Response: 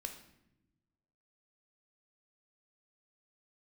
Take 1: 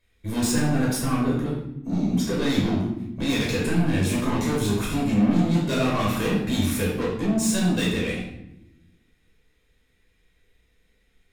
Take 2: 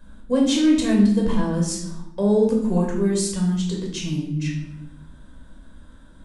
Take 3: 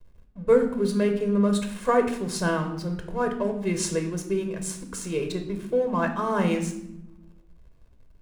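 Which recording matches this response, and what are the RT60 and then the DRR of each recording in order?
3; no single decay rate, no single decay rate, no single decay rate; -5.5 dB, -1.5 dB, 5.0 dB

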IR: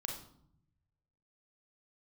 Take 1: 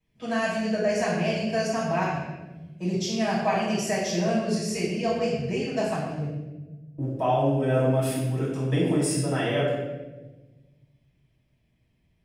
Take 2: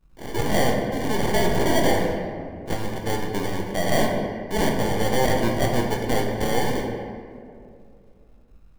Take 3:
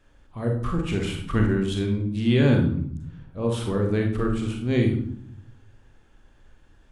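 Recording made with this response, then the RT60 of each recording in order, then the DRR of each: 3; 1.1 s, 2.4 s, 0.65 s; -10.5 dB, -0.5 dB, 1.5 dB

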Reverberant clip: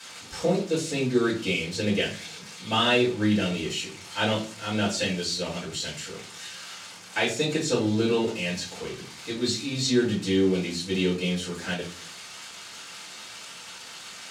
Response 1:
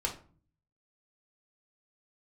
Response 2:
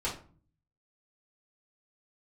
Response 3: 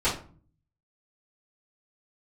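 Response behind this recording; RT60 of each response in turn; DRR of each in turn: 3; 0.40 s, 0.40 s, 0.40 s; -0.5 dB, -8.0 dB, -13.0 dB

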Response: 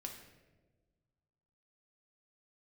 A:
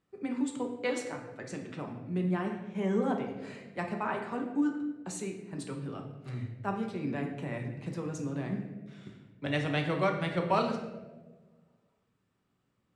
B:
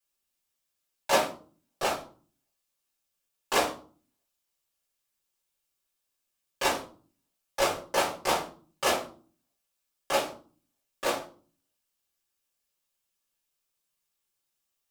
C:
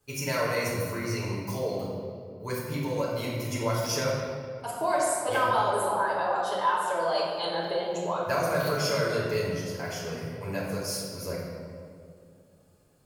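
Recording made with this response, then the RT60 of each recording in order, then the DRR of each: A; 1.3 s, 0.45 s, 2.3 s; 2.0 dB, -11.0 dB, -8.0 dB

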